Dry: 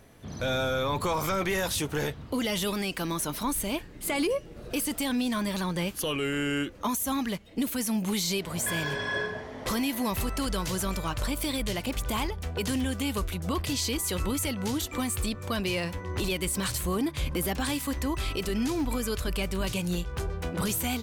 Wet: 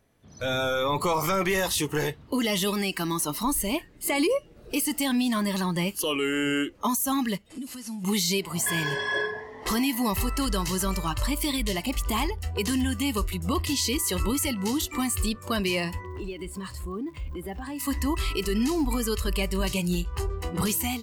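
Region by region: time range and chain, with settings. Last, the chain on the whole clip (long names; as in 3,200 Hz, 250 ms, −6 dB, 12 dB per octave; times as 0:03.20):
0:07.50–0:08.04: linear delta modulator 64 kbit/s, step −38 dBFS + double-tracking delay 12 ms −14 dB + downward compressor 5 to 1, threshold −36 dBFS
0:16.05–0:17.78: low-pass filter 1,500 Hz 6 dB per octave + surface crackle 190 per second −39 dBFS + downward compressor 5 to 1, threshold −33 dBFS
whole clip: noise reduction from a noise print of the clip's start 11 dB; automatic gain control gain up to 5 dB; level −1.5 dB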